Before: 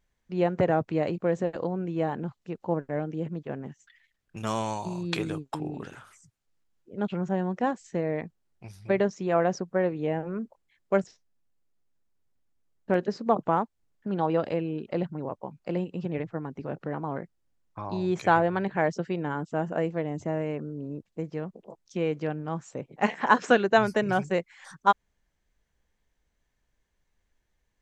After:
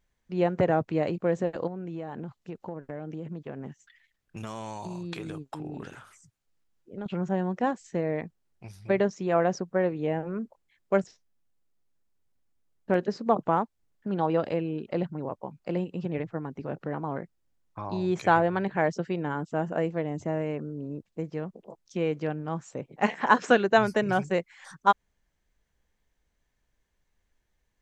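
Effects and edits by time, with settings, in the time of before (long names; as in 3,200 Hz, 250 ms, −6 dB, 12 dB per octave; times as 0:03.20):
0:01.67–0:07.06: downward compressor, threshold −32 dBFS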